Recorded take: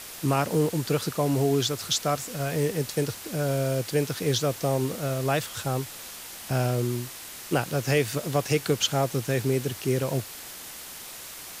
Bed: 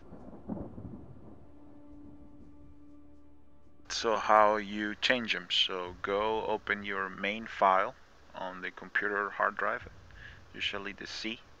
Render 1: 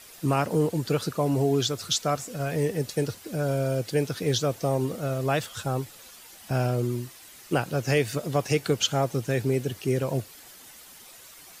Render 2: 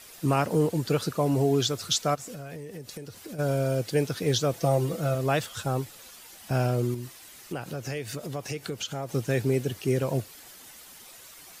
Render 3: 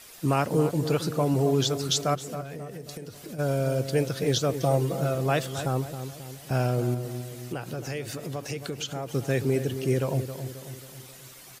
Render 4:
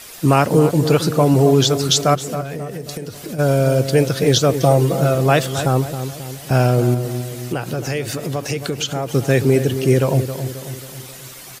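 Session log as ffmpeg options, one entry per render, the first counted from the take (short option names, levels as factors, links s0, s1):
-af "afftdn=nr=10:nf=-41"
-filter_complex "[0:a]asplit=3[s0][s1][s2];[s0]afade=t=out:st=2.14:d=0.02[s3];[s1]acompressor=threshold=0.0178:ratio=16:attack=3.2:release=140:knee=1:detection=peak,afade=t=in:st=2.14:d=0.02,afade=t=out:st=3.38:d=0.02[s4];[s2]afade=t=in:st=3.38:d=0.02[s5];[s3][s4][s5]amix=inputs=3:normalize=0,asettb=1/sr,asplit=3[s6][s7][s8];[s6]atrim=end=4.534[s9];[s7]atrim=start=4.53:end=5.15,asetpts=PTS-STARTPTS,afade=t=in:d=0.004:c=qsin,afade=t=out:st=0.616:d=0.004:c=qsin,aecho=1:1:6:0.65,atrim=end_sample=27342[s10];[s8]atrim=start=5.146[s11];[s9][s10]acrossfade=d=0.004:c1=hsin:c2=qsin[s12];[s12][s11]acrossfade=d=0.004:c1=qsin:c2=hsin,asettb=1/sr,asplit=3[s13][s14][s15];[s13]atrim=end=6.944[s16];[s14]atrim=start=6.94:end=9.09,asetpts=PTS-STARTPTS,afade=t=in:d=0.004:c=qsin,afade=t=out:st=2.146:d=0.004:c=qsin,acompressor=threshold=0.0251:ratio=3:attack=3.2:release=140:knee=1:detection=peak[s17];[s15]atrim=start=9.086[s18];[s16][s17]acrossfade=d=0.004:c1=hsin:c2=qsin[s19];[s19][s18]acrossfade=d=0.004:c1=qsin:c2=hsin"
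-filter_complex "[0:a]asplit=2[s0][s1];[s1]adelay=269,lowpass=f=1100:p=1,volume=0.355,asplit=2[s2][s3];[s3]adelay=269,lowpass=f=1100:p=1,volume=0.54,asplit=2[s4][s5];[s5]adelay=269,lowpass=f=1100:p=1,volume=0.54,asplit=2[s6][s7];[s7]adelay=269,lowpass=f=1100:p=1,volume=0.54,asplit=2[s8][s9];[s9]adelay=269,lowpass=f=1100:p=1,volume=0.54,asplit=2[s10][s11];[s11]adelay=269,lowpass=f=1100:p=1,volume=0.54[s12];[s0][s2][s4][s6][s8][s10][s12]amix=inputs=7:normalize=0"
-af "volume=3.35,alimiter=limit=0.708:level=0:latency=1"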